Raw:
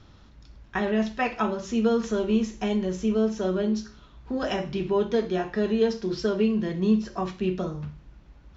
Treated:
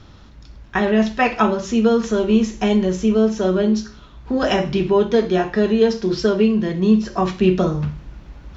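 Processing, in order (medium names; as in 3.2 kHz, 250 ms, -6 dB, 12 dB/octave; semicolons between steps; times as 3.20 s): gain riding within 4 dB 0.5 s; trim +8.5 dB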